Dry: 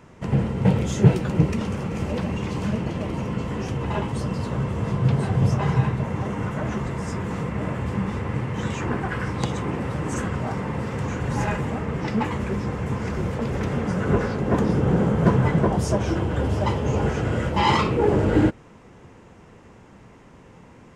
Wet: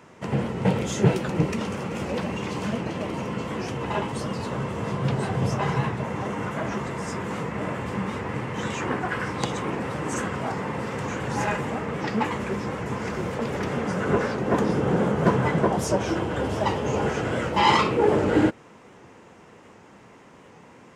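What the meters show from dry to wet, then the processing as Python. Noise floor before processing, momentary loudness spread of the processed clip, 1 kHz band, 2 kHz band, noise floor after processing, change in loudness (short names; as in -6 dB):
-48 dBFS, 8 LU, +1.5 dB, +2.0 dB, -50 dBFS, -2.0 dB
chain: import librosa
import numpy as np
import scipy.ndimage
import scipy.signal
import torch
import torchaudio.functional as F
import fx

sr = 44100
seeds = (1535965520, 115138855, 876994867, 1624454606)

y = fx.highpass(x, sr, hz=300.0, slope=6)
y = fx.record_warp(y, sr, rpm=78.0, depth_cents=100.0)
y = F.gain(torch.from_numpy(y), 2.0).numpy()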